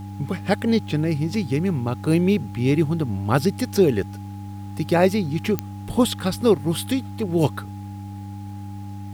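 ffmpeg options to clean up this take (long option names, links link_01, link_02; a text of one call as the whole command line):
ffmpeg -i in.wav -af "adeclick=threshold=4,bandreject=frequency=99.5:width_type=h:width=4,bandreject=frequency=199:width_type=h:width=4,bandreject=frequency=298.5:width_type=h:width=4,bandreject=frequency=830:width=30,agate=range=-21dB:threshold=-26dB" out.wav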